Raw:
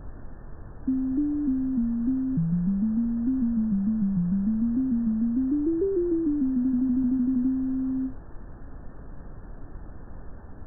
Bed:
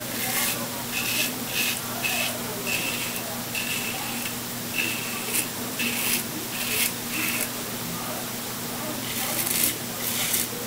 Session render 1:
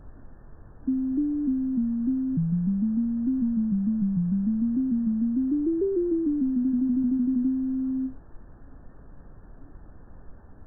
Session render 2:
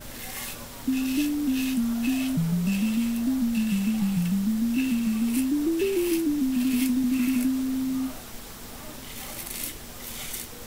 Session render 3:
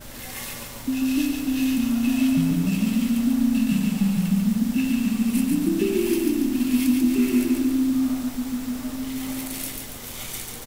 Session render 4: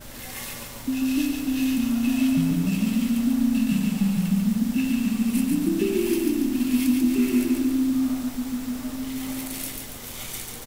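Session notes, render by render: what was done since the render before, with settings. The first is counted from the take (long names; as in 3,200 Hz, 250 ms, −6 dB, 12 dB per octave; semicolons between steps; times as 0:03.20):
noise reduction from a noise print 6 dB
mix in bed −10.5 dB
slap from a distant wall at 230 metres, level −8 dB; feedback echo at a low word length 141 ms, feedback 55%, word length 9 bits, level −3.5 dB
level −1 dB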